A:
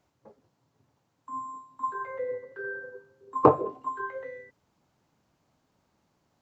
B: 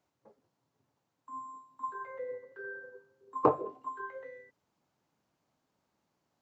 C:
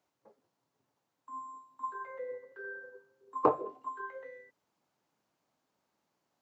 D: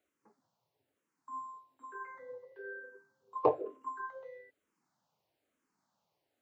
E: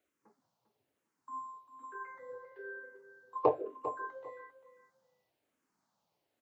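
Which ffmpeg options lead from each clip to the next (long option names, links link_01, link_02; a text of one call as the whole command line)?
ffmpeg -i in.wav -af "lowshelf=frequency=100:gain=-10.5,volume=-6.5dB" out.wav
ffmpeg -i in.wav -af "lowshelf=frequency=160:gain=-10.5" out.wav
ffmpeg -i in.wav -filter_complex "[0:a]asplit=2[link_01][link_02];[link_02]afreqshift=-1.1[link_03];[link_01][link_03]amix=inputs=2:normalize=1,volume=1dB" out.wav
ffmpeg -i in.wav -af "aecho=1:1:398|796:0.224|0.0403" out.wav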